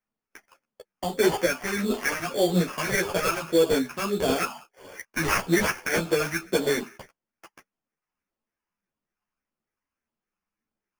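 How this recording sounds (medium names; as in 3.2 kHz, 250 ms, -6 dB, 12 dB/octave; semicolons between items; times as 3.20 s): phasing stages 8, 1.7 Hz, lowest notch 450–1800 Hz; aliases and images of a low sample rate 3.9 kHz, jitter 0%; a shimmering, thickened sound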